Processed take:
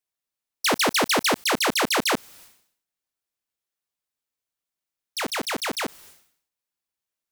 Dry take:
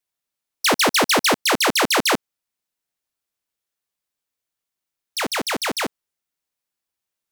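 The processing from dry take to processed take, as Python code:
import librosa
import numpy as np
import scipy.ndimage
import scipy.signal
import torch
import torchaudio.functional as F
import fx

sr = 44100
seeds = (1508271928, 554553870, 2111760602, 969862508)

y = fx.sustainer(x, sr, db_per_s=96.0)
y = y * 10.0 ** (-4.0 / 20.0)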